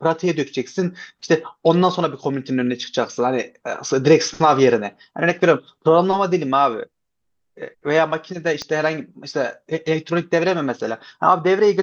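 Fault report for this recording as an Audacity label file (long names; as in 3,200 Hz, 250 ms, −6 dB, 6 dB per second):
8.620000	8.620000	click −14 dBFS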